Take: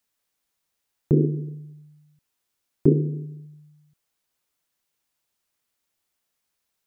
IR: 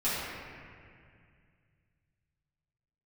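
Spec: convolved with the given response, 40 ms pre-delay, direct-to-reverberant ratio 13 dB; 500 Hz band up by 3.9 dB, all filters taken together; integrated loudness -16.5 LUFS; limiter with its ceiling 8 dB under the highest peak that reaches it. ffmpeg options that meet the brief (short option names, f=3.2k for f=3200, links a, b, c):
-filter_complex "[0:a]equalizer=f=500:t=o:g=5.5,alimiter=limit=-10.5dB:level=0:latency=1,asplit=2[a][b];[1:a]atrim=start_sample=2205,adelay=40[c];[b][c]afir=irnorm=-1:irlink=0,volume=-23.5dB[d];[a][d]amix=inputs=2:normalize=0,volume=9.5dB"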